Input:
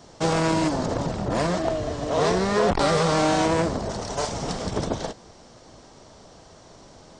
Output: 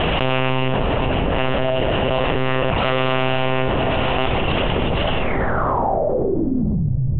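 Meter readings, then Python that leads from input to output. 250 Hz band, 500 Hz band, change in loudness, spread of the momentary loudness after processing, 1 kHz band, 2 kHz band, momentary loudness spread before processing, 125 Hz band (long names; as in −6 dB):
+4.0 dB, +4.5 dB, +4.0 dB, 1 LU, +5.0 dB, +8.5 dB, 9 LU, +8.0 dB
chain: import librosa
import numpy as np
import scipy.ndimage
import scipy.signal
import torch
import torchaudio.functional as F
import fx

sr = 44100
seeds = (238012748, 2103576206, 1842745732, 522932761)

y = fx.lpc_monotone(x, sr, seeds[0], pitch_hz=130.0, order=10)
y = fx.air_absorb(y, sr, metres=180.0)
y = fx.echo_diffused(y, sr, ms=577, feedback_pct=44, wet_db=-12.5)
y = fx.filter_sweep_lowpass(y, sr, from_hz=2800.0, to_hz=130.0, start_s=5.18, end_s=6.93, q=7.2)
y = fx.env_flatten(y, sr, amount_pct=100)
y = y * librosa.db_to_amplitude(-1.0)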